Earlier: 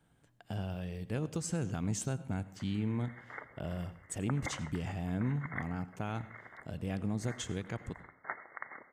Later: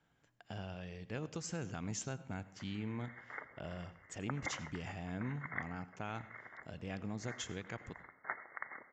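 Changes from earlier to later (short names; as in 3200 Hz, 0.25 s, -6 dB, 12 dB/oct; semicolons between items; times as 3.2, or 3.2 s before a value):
speech: add low shelf 340 Hz -6 dB; master: add rippled Chebyshev low-pass 7400 Hz, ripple 3 dB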